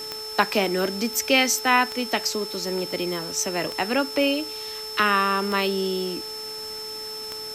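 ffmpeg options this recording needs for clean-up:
-af "adeclick=t=4,bandreject=f=433.9:t=h:w=4,bandreject=f=867.8:t=h:w=4,bandreject=f=1301.7:t=h:w=4,bandreject=f=5300:w=30,afwtdn=0.0079"

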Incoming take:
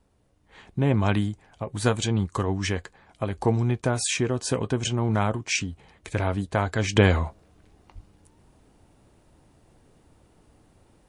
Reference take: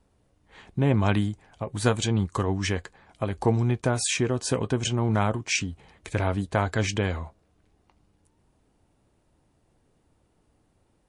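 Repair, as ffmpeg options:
-filter_complex "[0:a]asplit=3[s0][s1][s2];[s0]afade=t=out:st=7.94:d=0.02[s3];[s1]highpass=f=140:w=0.5412,highpass=f=140:w=1.3066,afade=t=in:st=7.94:d=0.02,afade=t=out:st=8.06:d=0.02[s4];[s2]afade=t=in:st=8.06:d=0.02[s5];[s3][s4][s5]amix=inputs=3:normalize=0,asetnsamples=n=441:p=0,asendcmd='6.96 volume volume -8.5dB',volume=1"

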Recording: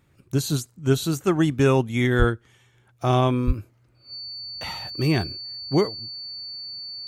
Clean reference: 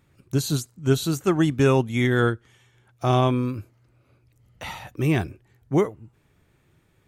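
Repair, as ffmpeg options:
-filter_complex "[0:a]bandreject=f=4500:w=30,asplit=3[s0][s1][s2];[s0]afade=t=out:st=2.18:d=0.02[s3];[s1]highpass=f=140:w=0.5412,highpass=f=140:w=1.3066,afade=t=in:st=2.18:d=0.02,afade=t=out:st=2.3:d=0.02[s4];[s2]afade=t=in:st=2.3:d=0.02[s5];[s3][s4][s5]amix=inputs=3:normalize=0,asplit=3[s6][s7][s8];[s6]afade=t=out:st=3.46:d=0.02[s9];[s7]highpass=f=140:w=0.5412,highpass=f=140:w=1.3066,afade=t=in:st=3.46:d=0.02,afade=t=out:st=3.58:d=0.02[s10];[s8]afade=t=in:st=3.58:d=0.02[s11];[s9][s10][s11]amix=inputs=3:normalize=0"

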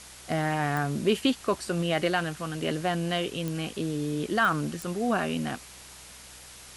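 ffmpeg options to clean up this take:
-af "adeclick=t=4,bandreject=f=62.6:t=h:w=4,bandreject=f=125.2:t=h:w=4,bandreject=f=187.8:t=h:w=4,afwtdn=0.0056"

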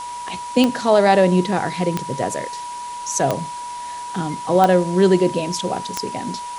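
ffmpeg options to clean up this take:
-af "adeclick=t=4,bandreject=f=970:w=30,afwtdn=0.013"

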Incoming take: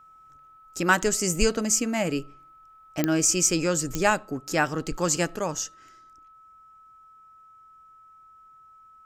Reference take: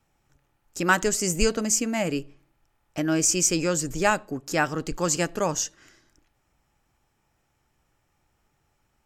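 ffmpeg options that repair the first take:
-af "adeclick=t=4,bandreject=f=1300:w=30,asetnsamples=n=441:p=0,asendcmd='5.36 volume volume 3.5dB',volume=1"

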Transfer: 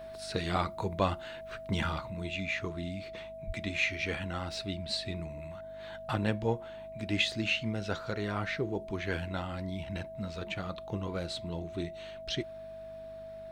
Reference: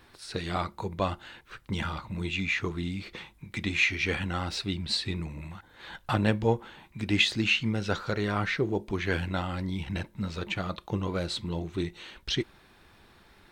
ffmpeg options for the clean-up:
-filter_complex "[0:a]bandreject=f=50.3:t=h:w=4,bandreject=f=100.6:t=h:w=4,bandreject=f=150.9:t=h:w=4,bandreject=f=201.2:t=h:w=4,bandreject=f=251.5:t=h:w=4,bandreject=f=650:w=30,asplit=3[s0][s1][s2];[s0]afade=t=out:st=3.46:d=0.02[s3];[s1]highpass=f=140:w=0.5412,highpass=f=140:w=1.3066,afade=t=in:st=3.46:d=0.02,afade=t=out:st=3.58:d=0.02[s4];[s2]afade=t=in:st=3.58:d=0.02[s5];[s3][s4][s5]amix=inputs=3:normalize=0,asetnsamples=n=441:p=0,asendcmd='2.1 volume volume 5.5dB',volume=1"

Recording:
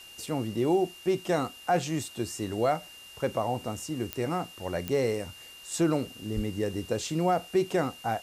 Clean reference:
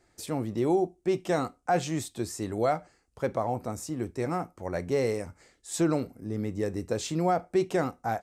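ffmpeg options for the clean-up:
-filter_complex "[0:a]adeclick=t=4,bandreject=f=2800:w=30,asplit=3[s0][s1][s2];[s0]afade=t=out:st=6.35:d=0.02[s3];[s1]highpass=f=140:w=0.5412,highpass=f=140:w=1.3066,afade=t=in:st=6.35:d=0.02,afade=t=out:st=6.47:d=0.02[s4];[s2]afade=t=in:st=6.47:d=0.02[s5];[s3][s4][s5]amix=inputs=3:normalize=0,afwtdn=0.0025"

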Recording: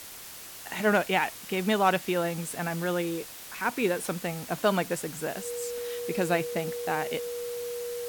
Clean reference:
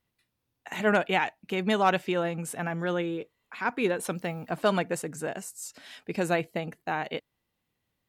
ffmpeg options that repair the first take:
-af "bandreject=f=480:w=30,afftdn=nr=30:nf=-44"

